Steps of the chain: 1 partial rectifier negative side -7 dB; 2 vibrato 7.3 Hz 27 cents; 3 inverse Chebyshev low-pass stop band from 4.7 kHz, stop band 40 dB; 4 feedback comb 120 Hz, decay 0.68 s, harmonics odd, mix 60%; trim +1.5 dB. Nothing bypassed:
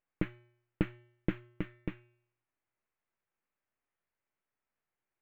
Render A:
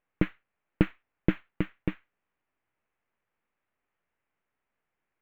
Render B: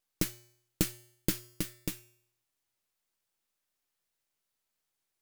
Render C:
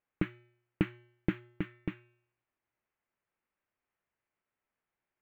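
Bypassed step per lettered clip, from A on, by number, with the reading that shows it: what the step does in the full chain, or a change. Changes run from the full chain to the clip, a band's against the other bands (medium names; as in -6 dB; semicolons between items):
4, loudness change +7.5 LU; 3, 4 kHz band +16.0 dB; 1, distortion -9 dB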